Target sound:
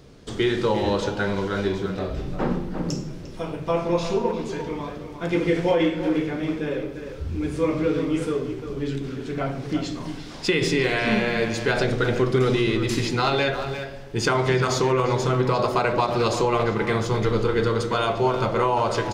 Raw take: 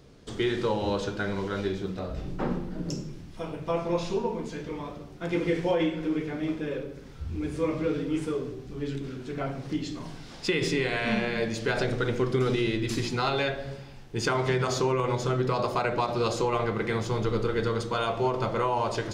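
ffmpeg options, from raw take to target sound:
-filter_complex "[0:a]asplit=2[a][b];[b]adelay=350,highpass=300,lowpass=3.4k,asoftclip=type=hard:threshold=-24dB,volume=-8dB[c];[a][c]amix=inputs=2:normalize=0,volume=5dB"

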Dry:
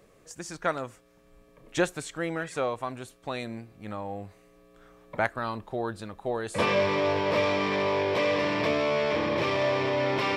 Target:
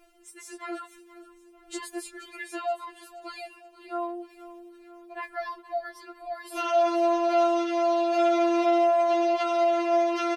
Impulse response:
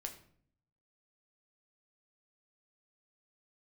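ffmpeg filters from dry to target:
-af "alimiter=limit=-19.5dB:level=0:latency=1:release=41,areverse,acompressor=mode=upward:threshold=-47dB:ratio=2.5,areverse,asetrate=50951,aresample=44100,atempo=0.865537,aecho=1:1:476|952|1428|1904:0.141|0.0692|0.0339|0.0166,afftfilt=real='re*4*eq(mod(b,16),0)':imag='im*4*eq(mod(b,16),0)':win_size=2048:overlap=0.75"

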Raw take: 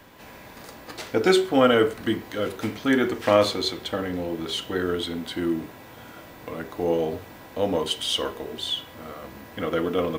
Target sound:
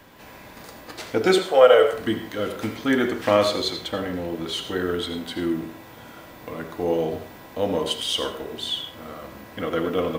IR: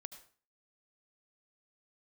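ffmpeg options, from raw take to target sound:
-filter_complex "[0:a]asettb=1/sr,asplit=3[a][b][c];[a]atrim=end=1.384[d];[b]atrim=start=1.38:end=1.93,asetpts=PTS-STARTPTS,afade=t=in:d=0.004:c=qsin,afade=t=out:st=0.546:d=0.004:c=qsin,lowshelf=f=370:t=q:w=3:g=-11.5[e];[c]atrim=start=1.926[f];[d][e]acrossfade=d=0.004:c1=hsin:c2=qsin[g];[g][f]acrossfade=d=0.004:c1=qsin:c2=hsin[h];[1:a]atrim=start_sample=2205[i];[h][i]afir=irnorm=-1:irlink=0,volume=5.5dB"

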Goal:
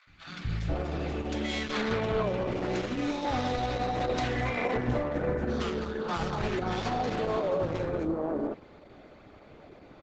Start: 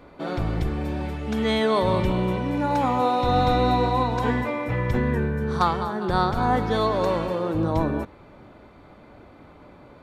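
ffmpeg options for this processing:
-filter_complex "[0:a]lowshelf=f=150:g=-5,volume=21.5dB,asoftclip=hard,volume=-21.5dB,asplit=3[a][b][c];[a]afade=t=out:st=4.14:d=0.02[d];[b]acontrast=60,afade=t=in:st=4.14:d=0.02,afade=t=out:st=4.87:d=0.02[e];[c]afade=t=in:st=4.87:d=0.02[f];[d][e][f]amix=inputs=3:normalize=0,aresample=16000,aresample=44100,bandreject=f=970:w=5.1,acrossover=split=190|1300[g][h][i];[g]adelay=70[j];[h]adelay=490[k];[j][k][i]amix=inputs=3:normalize=0,alimiter=limit=-19.5dB:level=0:latency=1:release=90,asettb=1/sr,asplit=3[l][m][n];[l]atrim=end=1.684[o];[m]atrim=start=1.68:end=2.23,asetpts=PTS-STARTPTS,afade=t=in:d=0.004:c=qsin,afade=t=out:st=0.546:d=0.004:c=qsin,adynamicequalizer=threshold=0.00316:dfrequency=1300:dqfactor=1.1:tfrequency=1300:tqfactor=1.1:attack=5:release=100:ratio=0.375:range=4:mode=boostabove:tftype=bell[p];[n]atrim=start=2.226[q];[o][p]acrossfade=d=0.004:c1=hsin:c2=qsin[r];[r][q]acrossfade=d=0.004:c1=qsin:c2=hsin,asettb=1/sr,asplit=3[s][t][u];[s]atrim=end=2.764[v];[t]atrim=start=2.76:end=3.25,asetpts=PTS-STARTPTS,afade=t=in:d=0.004:c=qsin,afade=t=out:st=0.486:d=0.004:c=qsin,acrossover=split=470|3000[w][x][y];[x]acompressor=threshold=-35dB:ratio=8[z];[w][z][y]amix=inputs=3:normalize=0[aa];[u]atrim=start=3.246[ab];[v][aa]acrossfade=d=0.004:c1=hsin:c2=qsin[ac];[ac][ab]acrossfade=d=0.004:c1=qsin:c2=hsin" -ar 48000 -c:a libopus -b:a 10k

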